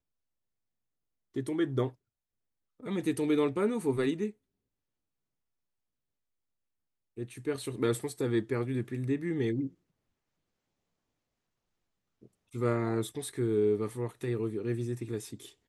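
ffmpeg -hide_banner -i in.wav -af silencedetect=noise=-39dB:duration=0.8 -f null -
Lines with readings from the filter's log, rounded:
silence_start: 0.00
silence_end: 1.36 | silence_duration: 1.36
silence_start: 1.89
silence_end: 2.83 | silence_duration: 0.94
silence_start: 4.30
silence_end: 7.18 | silence_duration: 2.88
silence_start: 9.67
silence_end: 12.55 | silence_duration: 2.87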